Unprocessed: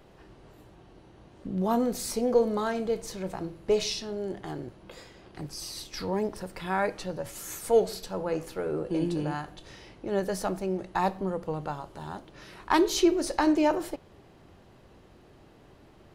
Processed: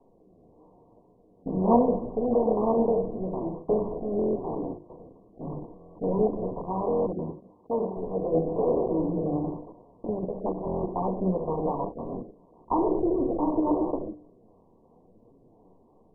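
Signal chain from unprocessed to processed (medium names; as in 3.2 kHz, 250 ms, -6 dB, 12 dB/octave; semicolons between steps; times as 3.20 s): spectral levelling over time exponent 0.6; treble shelf 2.1 kHz -10 dB; simulated room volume 2100 m³, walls furnished, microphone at 1.8 m; flange 0.91 Hz, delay 6.9 ms, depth 7 ms, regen +45%; gate -34 dBFS, range -18 dB; 10.07–10.65 s: level held to a coarse grid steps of 9 dB; hum notches 50/100/150/200/250/300/350/400/450/500 Hz; rotary cabinet horn 1 Hz; 4.97–5.98 s: transient shaper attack -5 dB, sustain +10 dB; 7.12–7.97 s: cabinet simulation 110–4200 Hz, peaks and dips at 130 Hz -9 dB, 430 Hz -4 dB, 640 Hz -9 dB; buffer glitch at 4.17/5.77/6.88/10.65 s, samples 1024, times 7; trim +3 dB; MP2 8 kbps 24 kHz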